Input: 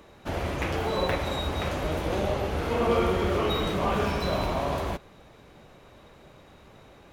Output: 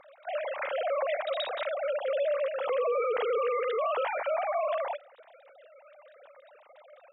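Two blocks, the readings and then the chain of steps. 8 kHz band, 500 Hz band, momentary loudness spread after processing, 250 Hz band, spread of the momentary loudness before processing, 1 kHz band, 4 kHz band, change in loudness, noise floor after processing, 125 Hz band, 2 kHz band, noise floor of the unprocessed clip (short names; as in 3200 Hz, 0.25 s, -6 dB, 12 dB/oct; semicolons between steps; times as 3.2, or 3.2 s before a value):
under -35 dB, +0.5 dB, 5 LU, under -30 dB, 7 LU, -2.5 dB, -7.5 dB, -2.5 dB, -57 dBFS, under -40 dB, -3.0 dB, -53 dBFS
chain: sine-wave speech; limiter -22 dBFS, peak gain reduction 10.5 dB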